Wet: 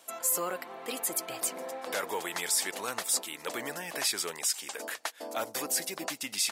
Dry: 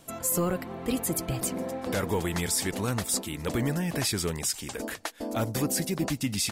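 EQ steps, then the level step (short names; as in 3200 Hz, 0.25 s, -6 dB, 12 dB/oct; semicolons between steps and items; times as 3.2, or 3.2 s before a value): HPF 610 Hz 12 dB/oct; 0.0 dB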